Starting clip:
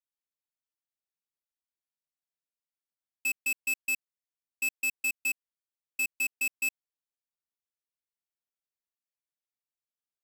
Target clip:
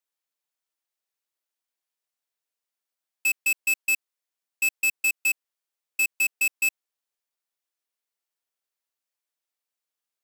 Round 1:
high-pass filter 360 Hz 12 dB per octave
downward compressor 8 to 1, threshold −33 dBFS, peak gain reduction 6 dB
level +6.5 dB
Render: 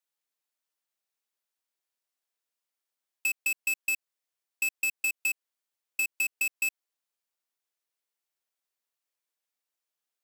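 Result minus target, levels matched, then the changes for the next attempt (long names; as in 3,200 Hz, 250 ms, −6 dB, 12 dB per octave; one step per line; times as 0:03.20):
downward compressor: peak gain reduction +6 dB
remove: downward compressor 8 to 1, threshold −33 dBFS, peak gain reduction 6 dB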